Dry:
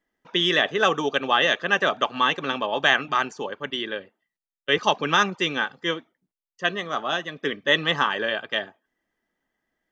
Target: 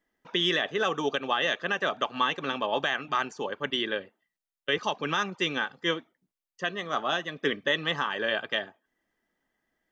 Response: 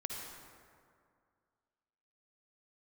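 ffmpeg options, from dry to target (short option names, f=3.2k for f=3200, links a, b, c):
-af "alimiter=limit=-14.5dB:level=0:latency=1:release=420"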